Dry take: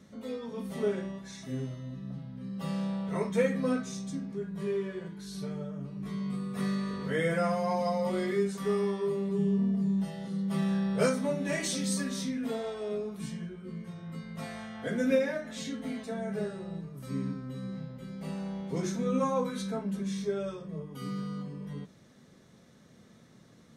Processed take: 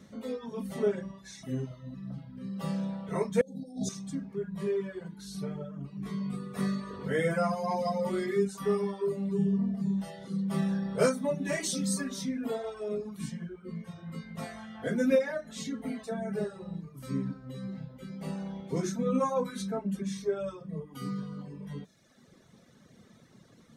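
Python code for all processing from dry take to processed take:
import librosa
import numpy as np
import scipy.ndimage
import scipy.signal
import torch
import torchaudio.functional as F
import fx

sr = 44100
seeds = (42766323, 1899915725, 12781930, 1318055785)

y = fx.chain(x, sr, fx.over_compress(threshold_db=-38.0, ratio=-1.0),
    fx.brickwall_bandstop(low_hz=860.0, high_hz=3300.0), at=(3.41, 3.89))
y = fx.dereverb_blind(y, sr, rt60_s=1.1)
y = fx.dynamic_eq(y, sr, hz=2900.0, q=1.0, threshold_db=-54.0, ratio=4.0, max_db=-4)
y = y * librosa.db_to_amplitude(2.5)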